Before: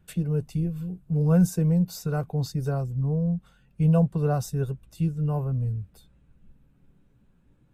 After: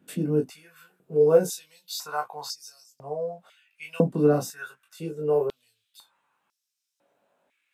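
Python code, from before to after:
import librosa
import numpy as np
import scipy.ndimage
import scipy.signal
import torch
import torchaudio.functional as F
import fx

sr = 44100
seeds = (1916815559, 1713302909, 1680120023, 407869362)

y = fx.room_early_taps(x, sr, ms=(20, 36), db=(-3.0, -9.0))
y = fx.filter_held_highpass(y, sr, hz=2.0, low_hz=270.0, high_hz=5400.0)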